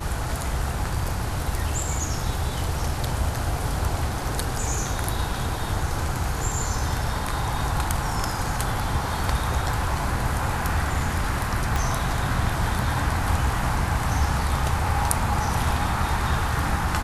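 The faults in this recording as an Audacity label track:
11.760000	11.760000	pop

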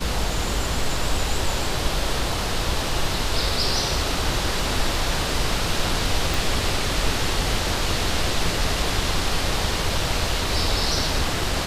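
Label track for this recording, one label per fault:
6.340000	6.340000	pop

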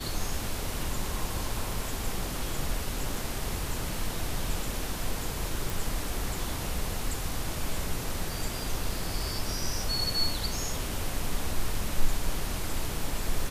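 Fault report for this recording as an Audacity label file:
5.700000	5.700000	pop

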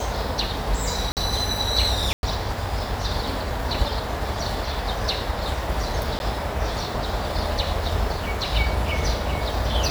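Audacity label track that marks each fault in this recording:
1.120000	1.170000	gap 48 ms
2.130000	2.230000	gap 0.101 s
6.190000	6.200000	gap 11 ms

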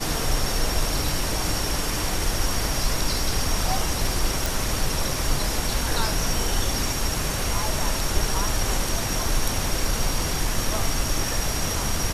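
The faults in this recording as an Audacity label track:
4.460000	4.460000	pop

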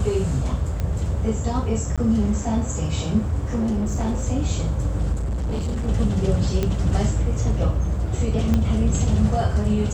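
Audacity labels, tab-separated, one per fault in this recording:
0.800000	0.800000	pop -14 dBFS
1.960000	1.980000	gap 16 ms
3.460000	4.240000	clipped -19 dBFS
5.120000	5.890000	clipped -21.5 dBFS
6.630000	6.630000	pop -10 dBFS
8.540000	8.540000	pop -10 dBFS

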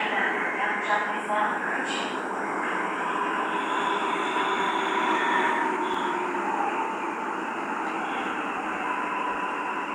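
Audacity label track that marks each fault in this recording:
5.940000	5.940000	gap 3 ms

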